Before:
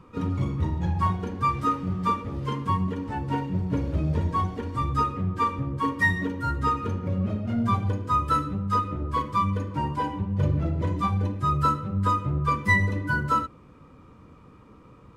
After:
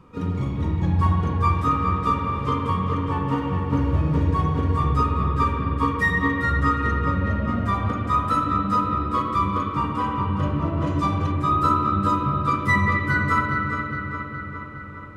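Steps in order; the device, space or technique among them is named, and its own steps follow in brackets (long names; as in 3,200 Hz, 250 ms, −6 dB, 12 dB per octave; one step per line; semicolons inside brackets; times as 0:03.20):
dub delay into a spring reverb (feedback echo with a low-pass in the loop 413 ms, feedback 64%, low-pass 4,400 Hz, level −5.5 dB; spring reverb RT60 2.3 s, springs 45/57 ms, chirp 20 ms, DRR 0 dB)
0:10.86–0:11.32: parametric band 5,700 Hz +7 dB 1.2 octaves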